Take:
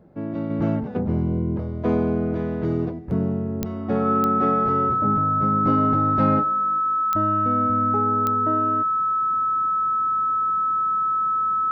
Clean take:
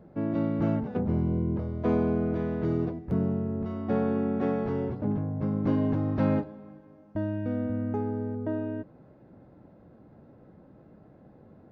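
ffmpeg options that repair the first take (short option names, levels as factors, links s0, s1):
-af "adeclick=t=4,bandreject=f=1300:w=30,asetnsamples=n=441:p=0,asendcmd='0.5 volume volume -4dB',volume=1"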